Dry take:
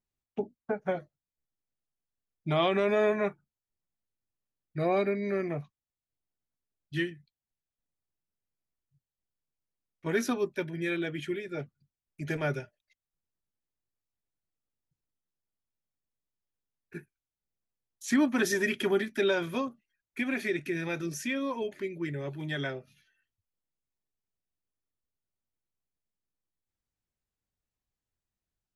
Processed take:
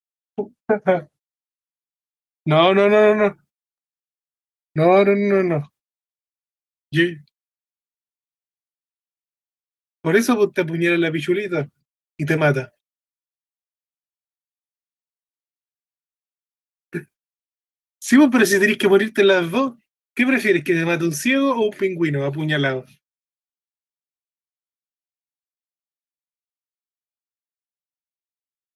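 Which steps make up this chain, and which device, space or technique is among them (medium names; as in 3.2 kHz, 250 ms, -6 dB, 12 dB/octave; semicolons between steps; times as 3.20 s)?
video call (high-pass 100 Hz 12 dB/octave; level rider gain up to 14.5 dB; gate -43 dBFS, range -57 dB; Opus 32 kbps 48 kHz)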